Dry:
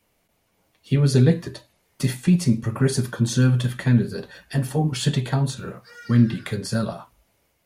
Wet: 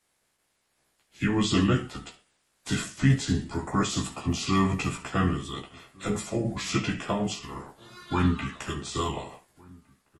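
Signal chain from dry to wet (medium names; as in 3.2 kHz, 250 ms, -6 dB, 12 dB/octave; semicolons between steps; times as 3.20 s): spectral peaks clipped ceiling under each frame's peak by 17 dB; on a send: early reflections 11 ms -3.5 dB, 54 ms -16.5 dB; on the sum: wide varispeed 0.751×; echo from a far wall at 250 m, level -26 dB; trim -7 dB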